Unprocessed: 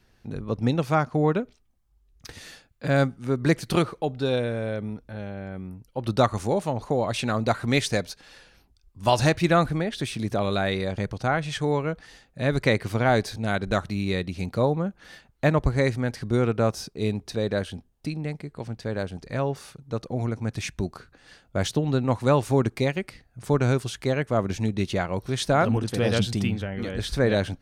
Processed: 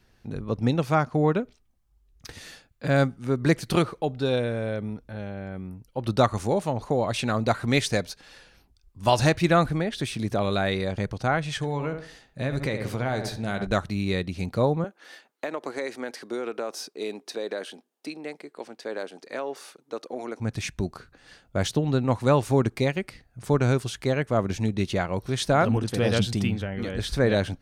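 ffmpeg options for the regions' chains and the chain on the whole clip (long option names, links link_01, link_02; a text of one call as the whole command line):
ffmpeg -i in.wav -filter_complex "[0:a]asettb=1/sr,asplit=3[link_01][link_02][link_03];[link_01]atrim=end=11.564[link_04];[link_02]atrim=start=11.56:end=13.67,asetpts=PTS-STARTPTS,afade=type=in:duration=0.004:curve=qsin,afade=type=out:start_time=2.106:duration=0.004:curve=qsin,asplit=2[link_05][link_06];[link_06]adelay=69,lowpass=frequency=2200:poles=1,volume=-9.5dB,asplit=2[link_07][link_08];[link_08]adelay=69,lowpass=frequency=2200:poles=1,volume=0.34,asplit=2[link_09][link_10];[link_10]adelay=69,lowpass=frequency=2200:poles=1,volume=0.34,asplit=2[link_11][link_12];[link_12]adelay=69,lowpass=frequency=2200:poles=1,volume=0.34[link_13];[link_05][link_07][link_09][link_11][link_13]amix=inputs=5:normalize=0,atrim=end_sample=93051,acompressor=threshold=-24dB:ratio=4:attack=3.2:release=140:knee=1:detection=peak,asplit=2[link_14][link_15];[link_15]adelay=15,volume=-12.5dB[link_16];[link_14][link_16]amix=inputs=2:normalize=0,atrim=end_sample=93051[link_17];[link_03]atrim=start=13.666[link_18];[link_04][link_17]acrossfade=duration=0.004:curve1=hsin:curve2=qsin[link_19];[link_19][link_18]acrossfade=duration=0.004:curve1=qsin:curve2=hsin,asettb=1/sr,asplit=3[link_20][link_21][link_22];[link_20]atrim=end=14.844[link_23];[link_21]atrim=start=14.84:end=20.4,asetpts=PTS-STARTPTS,afade=type=in:duration=0.004:curve=qsin,afade=type=out:start_time=5.556:duration=0.004:curve=qsin,highpass=frequency=300:width=0.5412,highpass=frequency=300:width=1.3066,acompressor=threshold=-25dB:ratio=12:attack=3.2:release=140:knee=1:detection=peak[link_24];[link_22]atrim=start=20.396[link_25];[link_23][link_24]acrossfade=duration=0.004:curve1=hsin:curve2=qsin[link_26];[link_26][link_25]acrossfade=duration=0.004:curve1=qsin:curve2=hsin" out.wav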